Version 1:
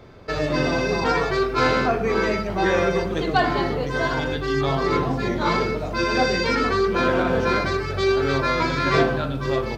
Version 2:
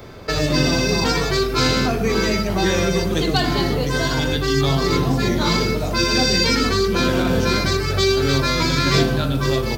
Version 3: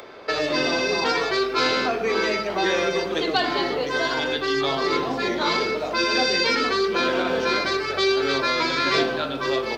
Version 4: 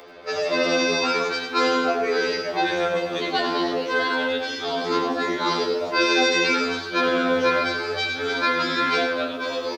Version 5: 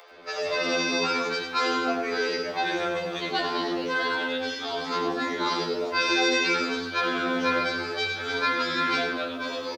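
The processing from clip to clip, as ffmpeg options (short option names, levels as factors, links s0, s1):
-filter_complex "[0:a]aemphasis=mode=production:type=50kf,acrossover=split=300|3000[s0][s1][s2];[s1]acompressor=threshold=0.0282:ratio=4[s3];[s0][s3][s2]amix=inputs=3:normalize=0,volume=2.24"
-filter_complex "[0:a]acrossover=split=310 4800:gain=0.0631 1 0.1[s0][s1][s2];[s0][s1][s2]amix=inputs=3:normalize=0,acompressor=mode=upward:threshold=0.00891:ratio=2.5"
-filter_complex "[0:a]asplit=2[s0][s1];[s1]aecho=0:1:96|244:0.398|0.141[s2];[s0][s2]amix=inputs=2:normalize=0,afftfilt=real='re*2*eq(mod(b,4),0)':imag='im*2*eq(mod(b,4),0)':win_size=2048:overlap=0.75"
-filter_complex "[0:a]acrossover=split=490[s0][s1];[s0]adelay=110[s2];[s2][s1]amix=inputs=2:normalize=0,volume=0.708"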